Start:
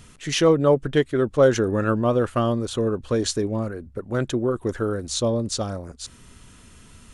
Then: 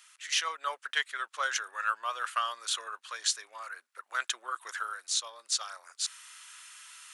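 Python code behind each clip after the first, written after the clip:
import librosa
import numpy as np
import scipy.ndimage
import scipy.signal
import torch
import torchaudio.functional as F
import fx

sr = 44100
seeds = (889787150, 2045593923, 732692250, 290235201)

y = scipy.signal.sosfilt(scipy.signal.butter(4, 1200.0, 'highpass', fs=sr, output='sos'), x)
y = fx.rider(y, sr, range_db=4, speed_s=0.5)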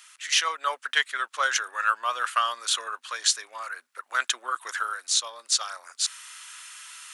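y = fx.peak_eq(x, sr, hz=250.0, db=6.5, octaves=0.24)
y = F.gain(torch.from_numpy(y), 6.5).numpy()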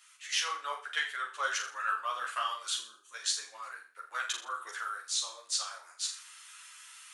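y = fx.spec_box(x, sr, start_s=2.76, length_s=0.38, low_hz=390.0, high_hz=5700.0, gain_db=-17)
y = fx.room_flutter(y, sr, wall_m=7.0, rt60_s=0.4)
y = fx.ensemble(y, sr)
y = F.gain(torch.from_numpy(y), -6.0).numpy()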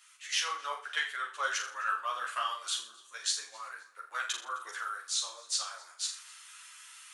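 y = fx.echo_feedback(x, sr, ms=262, feedback_pct=35, wet_db=-24)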